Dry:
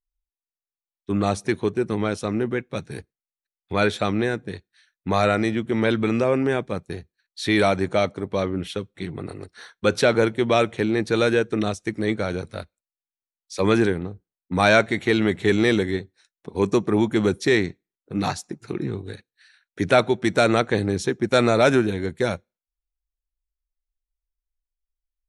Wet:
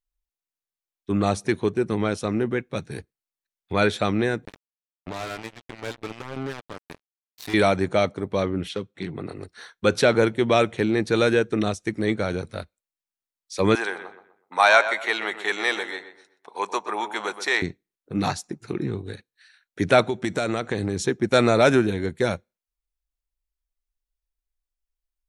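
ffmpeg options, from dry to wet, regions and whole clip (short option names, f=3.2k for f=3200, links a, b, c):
-filter_complex "[0:a]asettb=1/sr,asplit=3[a][b][c];[a]atrim=end=4.454[d];[b]atrim=start=4.45:end=7.54,asetpts=PTS-STARTPTS,afade=t=in:d=0.004:c=qsin,afade=t=out:st=3.086:d=0.004:c=qsin,acompressor=threshold=-41dB:ratio=2:attack=3.2:release=140:knee=1:detection=peak,aecho=1:1:6.9:0.64,atrim=end_sample=136269,acrusher=bits=4:mix=0:aa=0.5[e];[c]atrim=start=7.536[f];[d][e]acrossfade=d=0.004:c1=hsin:c2=qsin[g];[g][f]acrossfade=d=0.004:c1=qsin:c2=hsin,asettb=1/sr,asplit=3[h][i][j];[h]atrim=end=8.694[k];[i]atrim=start=8.69:end=9.38,asetpts=PTS-STARTPTS,afade=t=in:d=0.004:c=qsin,afade=t=out:st=0.686:d=0.004:c=qsin,asoftclip=type=hard:threshold=-20.5dB,highpass=110,lowpass=7.3k[l];[j]atrim=start=9.376[m];[k][l]acrossfade=d=0.004:c1=hsin:c2=qsin[n];[n][m]acrossfade=d=0.004:c1=qsin:c2=hsin,asettb=1/sr,asplit=3[o][p][q];[o]atrim=end=13.754[r];[p]atrim=start=13.75:end=17.62,asetpts=PTS-STARTPTS,afade=t=in:d=0.004:c=qsin,afade=t=out:st=3.866:d=0.004:c=qsin,highpass=f=870:t=q:w=1.8,asplit=2[s][t];[t]adelay=125,lowpass=f=2.6k:p=1,volume=-10.5dB,asplit=2[u][v];[v]adelay=125,lowpass=f=2.6k:p=1,volume=0.34,asplit=2[w][x];[x]adelay=125,lowpass=f=2.6k:p=1,volume=0.34,asplit=2[y][z];[z]adelay=125,lowpass=f=2.6k:p=1,volume=0.34[aa];[s][u][w][y][aa]amix=inputs=5:normalize=0,atrim=end_sample=170667[ab];[q]atrim=start=17.616[ac];[r][ab]acrossfade=d=0.004:c1=hsin:c2=qsin[ad];[ad][ac]acrossfade=d=0.004:c1=qsin:c2=hsin,asettb=1/sr,asplit=3[ae][af][ag];[ae]atrim=end=20.044[ah];[af]atrim=start=20.04:end=21.06,asetpts=PTS-STARTPTS,afade=t=in:d=0.004:c=qsin,afade=t=out:st=1.016:d=0.004:c=qsin,equalizer=f=7.3k:t=o:w=0.41:g=4.5,acompressor=threshold=-20dB:ratio=6:attack=3.2:release=140:knee=1:detection=peak[ai];[ag]atrim=start=21.056[aj];[ah][ai]acrossfade=d=0.004:c1=hsin:c2=qsin[ak];[ak][aj]acrossfade=d=0.004:c1=qsin:c2=hsin"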